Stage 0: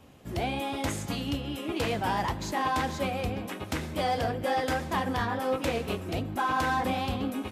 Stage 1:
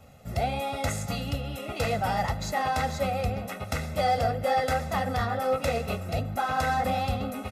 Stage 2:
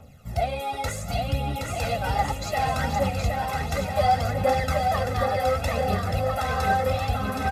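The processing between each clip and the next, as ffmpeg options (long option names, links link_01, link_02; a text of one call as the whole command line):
ffmpeg -i in.wav -af "equalizer=frequency=3100:width=6.2:gain=-7.5,aecho=1:1:1.5:0.82" out.wav
ffmpeg -i in.wav -af "aphaser=in_gain=1:out_gain=1:delay=2.6:decay=0.58:speed=0.67:type=triangular,aecho=1:1:770|1348|1781|2105|2349:0.631|0.398|0.251|0.158|0.1,volume=-1.5dB" out.wav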